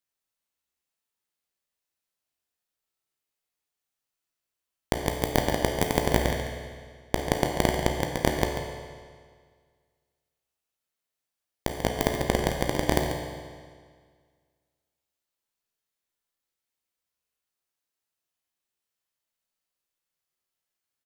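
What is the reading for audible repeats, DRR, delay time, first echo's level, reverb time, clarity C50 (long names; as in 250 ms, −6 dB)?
1, 0.5 dB, 140 ms, −9.5 dB, 1.8 s, 2.5 dB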